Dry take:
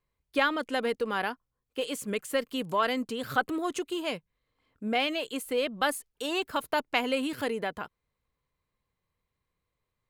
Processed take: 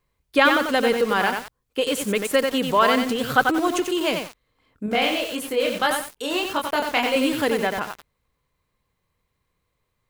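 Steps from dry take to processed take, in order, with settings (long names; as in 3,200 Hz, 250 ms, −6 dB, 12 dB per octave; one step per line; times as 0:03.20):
0:04.86–0:07.16: chorus effect 1.7 Hz, delay 20 ms, depth 5.4 ms
feedback echo at a low word length 91 ms, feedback 35%, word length 7 bits, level −4 dB
level +8.5 dB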